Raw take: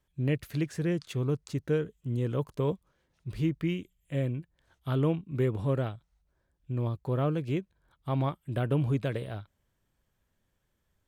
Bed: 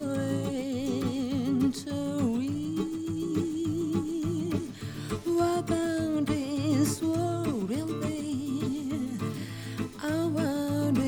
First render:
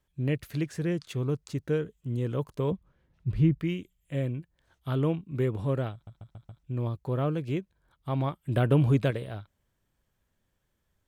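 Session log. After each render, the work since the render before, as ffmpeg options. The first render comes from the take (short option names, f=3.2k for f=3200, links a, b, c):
-filter_complex "[0:a]asettb=1/sr,asplit=3[a][b][c];[a]atrim=end=2.714[d];[b]atrim=start=2.71:end=3.6,asetpts=PTS-STARTPTS,afade=t=in:d=0.004:c=qsin,afade=t=out:st=0.886:d=0.004:c=qsin,bass=f=250:g=9,treble=f=4k:g=-11[e];[c]atrim=start=3.596[f];[d][e]acrossfade=d=0.004:c1=hsin:c2=qsin[g];[g][f]acrossfade=d=0.004:c1=qsin:c2=hsin,asettb=1/sr,asplit=3[h][i][j];[h]atrim=end=8.444[k];[i]atrim=start=8.44:end=9.11,asetpts=PTS-STARTPTS,afade=t=in:d=0.004:c=qsin,afade=t=out:st=0.666:d=0.004:c=qsin,acontrast=29[l];[j]atrim=start=9.106[m];[k][l]acrossfade=d=0.004:c1=hsin:c2=qsin[n];[n][m]acrossfade=d=0.004:c1=qsin:c2=hsin,asplit=6[o][p][q][r][s][t];[o]atrim=end=6.072[u];[p]atrim=start=5.928:end=6.072[v];[q]atrim=start=5.928:end=6.072[w];[r]atrim=start=5.928:end=6.072[x];[s]atrim=start=5.928:end=6.072[y];[t]atrim=start=6.628[z];[u][v]acrossfade=d=0.004:c1=hsin:c2=hsin[aa];[aa][w]acrossfade=d=0.004:c1=hsin:c2=hsin[ab];[ab][x]acrossfade=d=0.004:c1=hsin:c2=hsin[ac];[ac][y]acrossfade=d=0.004:c1=hsin:c2=hsin[ad];[ad][z]acrossfade=d=0.004:c1=hsin:c2=hsin"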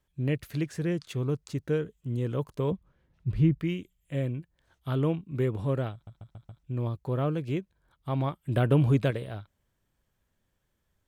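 -af anull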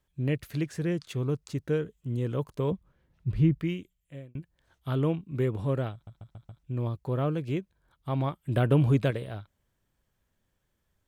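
-filter_complex "[0:a]asplit=2[a][b];[a]atrim=end=4.35,asetpts=PTS-STARTPTS,afade=t=out:st=3.65:d=0.7[c];[b]atrim=start=4.35,asetpts=PTS-STARTPTS,afade=t=in:d=0.004:c=hsin[d];[c][d]concat=n=2:v=0:a=1"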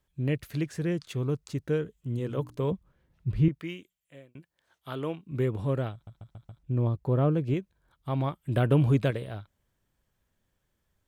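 -filter_complex "[0:a]asettb=1/sr,asplit=3[a][b][c];[a]atrim=end=2.174[d];[b]atrim=start=2.17:end=2.71,asetpts=PTS-STARTPTS,afade=t=in:d=0.004:c=qsin,afade=t=out:st=0.536:d=0.004:c=qsin,bandreject=f=60:t=h:w=6,bandreject=f=120:t=h:w=6,bandreject=f=180:t=h:w=6,bandreject=f=240:t=h:w=6,bandreject=f=300:t=h:w=6,bandreject=f=360:t=h:w=6[e];[c]atrim=start=2.706[f];[d][e]acrossfade=d=0.004:c1=hsin:c2=qsin[g];[g][f]acrossfade=d=0.004:c1=qsin:c2=hsin,asettb=1/sr,asplit=3[h][i][j];[h]atrim=end=3.484[k];[i]atrim=start=3.48:end=5.26,asetpts=PTS-STARTPTS,afade=t=in:d=0.004:c=qsin,afade=t=out:st=1.776:d=0.004:c=qsin,highpass=f=510:p=1[l];[j]atrim=start=5.256[m];[k][l]acrossfade=d=0.004:c1=hsin:c2=qsin[n];[n][m]acrossfade=d=0.004:c1=qsin:c2=hsin,asettb=1/sr,asplit=3[o][p][q];[o]atrim=end=6.584[r];[p]atrim=start=6.58:end=7.54,asetpts=PTS-STARTPTS,afade=t=in:d=0.004:c=qsin,afade=t=out:st=0.956:d=0.004:c=qsin,tiltshelf=f=1.3k:g=4.5[s];[q]atrim=start=7.536[t];[r][s]acrossfade=d=0.004:c1=hsin:c2=qsin[u];[u][t]acrossfade=d=0.004:c1=qsin:c2=hsin"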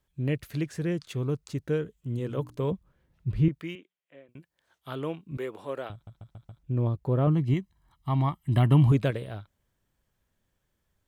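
-filter_complex "[0:a]asettb=1/sr,asplit=3[a][b][c];[a]atrim=end=3.754[d];[b]atrim=start=3.75:end=4.29,asetpts=PTS-STARTPTS,afade=t=in:d=0.004:c=qsin,afade=t=out:st=0.536:d=0.004:c=qsin,highpass=260,lowpass=2.6k[e];[c]atrim=start=4.286[f];[d][e]acrossfade=d=0.004:c1=hsin:c2=qsin[g];[g][f]acrossfade=d=0.004:c1=qsin:c2=hsin,asettb=1/sr,asplit=3[h][i][j];[h]atrim=end=5.374[k];[i]atrim=start=5.37:end=5.9,asetpts=PTS-STARTPTS,afade=t=in:d=0.004:c=qsin,afade=t=out:st=0.526:d=0.004:c=qsin,highpass=470[l];[j]atrim=start=5.896[m];[k][l]acrossfade=d=0.004:c1=hsin:c2=qsin[n];[n][m]acrossfade=d=0.004:c1=qsin:c2=hsin,asettb=1/sr,asplit=3[o][p][q];[o]atrim=end=7.274[r];[p]atrim=start=7.27:end=8.92,asetpts=PTS-STARTPTS,afade=t=in:d=0.004:c=qsin,afade=t=out:st=1.646:d=0.004:c=qsin,aecho=1:1:1:0.78,atrim=end_sample=72765[s];[q]atrim=start=8.916[t];[r][s]acrossfade=d=0.004:c1=hsin:c2=qsin[u];[u][t]acrossfade=d=0.004:c1=qsin:c2=hsin"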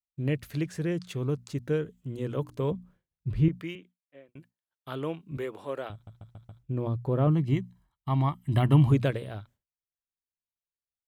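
-af "bandreject=f=60:t=h:w=6,bandreject=f=120:t=h:w=6,bandreject=f=180:t=h:w=6,bandreject=f=240:t=h:w=6,agate=range=-33dB:threshold=-51dB:ratio=3:detection=peak"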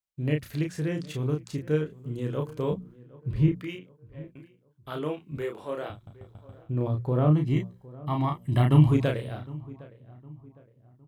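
-filter_complex "[0:a]asplit=2[a][b];[b]adelay=33,volume=-4dB[c];[a][c]amix=inputs=2:normalize=0,asplit=2[d][e];[e]adelay=760,lowpass=f=1.5k:p=1,volume=-20dB,asplit=2[f][g];[g]adelay=760,lowpass=f=1.5k:p=1,volume=0.41,asplit=2[h][i];[i]adelay=760,lowpass=f=1.5k:p=1,volume=0.41[j];[d][f][h][j]amix=inputs=4:normalize=0"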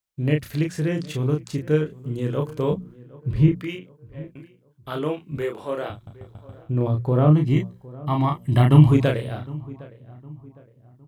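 -af "volume=5.5dB"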